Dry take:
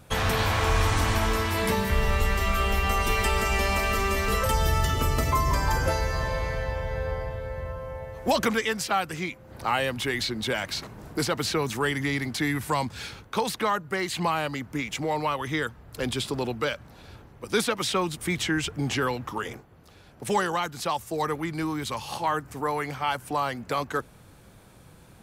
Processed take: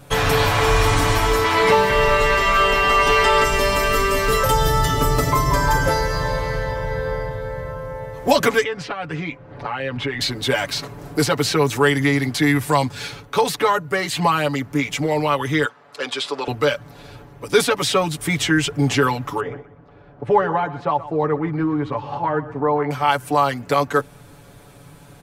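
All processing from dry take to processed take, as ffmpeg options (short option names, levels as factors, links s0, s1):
-filter_complex "[0:a]asettb=1/sr,asplit=3[s0][s1][s2];[s0]atrim=end=1.444[s3];[s1]atrim=start=1.44:end=3.44,asetpts=PTS-STARTPTS,afade=t=in:d=0.004:c=qsin,afade=t=out:st=1.996:d=0.004:c=qsin,acrossover=split=7600[s4][s5];[s5]acompressor=threshold=0.00398:ratio=4:attack=1:release=60[s6];[s4][s6]amix=inputs=2:normalize=0,highshelf=f=8600:g=6,asplit=2[s7][s8];[s8]highpass=f=720:p=1,volume=3.98,asoftclip=type=tanh:threshold=0.299[s9];[s7][s9]amix=inputs=2:normalize=0,lowpass=f=2400:p=1,volume=0.501[s10];[s2]atrim=start=3.436[s11];[s3][s10]acrossfade=d=0.004:c1=hsin:c2=qsin[s12];[s12][s11]acrossfade=d=0.004:c1=qsin:c2=hsin,asettb=1/sr,asplit=3[s13][s14][s15];[s13]atrim=end=8.634[s16];[s14]atrim=start=8.63:end=10.21,asetpts=PTS-STARTPTS,afade=t=in:d=0.004:c=qsin,afade=t=out:st=1.576:d=0.004:c=qsin,lowpass=2800,acompressor=threshold=0.0398:ratio=12:attack=3.2:release=140:knee=1:detection=peak[s17];[s15]atrim=start=10.206[s18];[s16][s17]acrossfade=d=0.004:c1=hsin:c2=qsin[s19];[s19][s18]acrossfade=d=0.004:c1=qsin:c2=hsin,asettb=1/sr,asplit=3[s20][s21][s22];[s20]atrim=end=15.654[s23];[s21]atrim=start=15.65:end=16.48,asetpts=PTS-STARTPTS,afade=t=in:d=0.004:c=qsin,afade=t=out:st=0.826:d=0.004:c=qsin,equalizer=f=1200:t=o:w=0.27:g=3.5,aeval=exprs='val(0)+0.00562*(sin(2*PI*50*n/s)+sin(2*PI*2*50*n/s)/2+sin(2*PI*3*50*n/s)/3+sin(2*PI*4*50*n/s)/4+sin(2*PI*5*50*n/s)/5)':c=same,highpass=530,lowpass=5900[s24];[s22]atrim=start=16.476[s25];[s23][s24]acrossfade=d=0.004:c1=hsin:c2=qsin[s26];[s26][s25]acrossfade=d=0.004:c1=qsin:c2=hsin,asettb=1/sr,asplit=3[s27][s28][s29];[s27]atrim=end=19.404[s30];[s28]atrim=start=19.4:end=22.91,asetpts=PTS-STARTPTS,afade=t=in:d=0.004:c=qsin,afade=t=out:st=3.506:d=0.004:c=qsin,lowpass=1400,aecho=1:1:124|248|372:0.178|0.0498|0.0139,atrim=end_sample=154791[s31];[s29]atrim=start=22.906[s32];[s30][s31]acrossfade=d=0.004:c1=hsin:c2=qsin[s33];[s33][s32]acrossfade=d=0.004:c1=qsin:c2=hsin,equalizer=f=510:w=1.2:g=2.5,aecho=1:1:7:0.82,volume=1.68"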